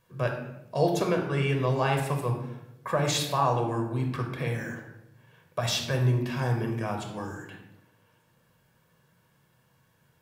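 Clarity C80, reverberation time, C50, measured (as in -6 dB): 8.5 dB, 0.90 s, 6.0 dB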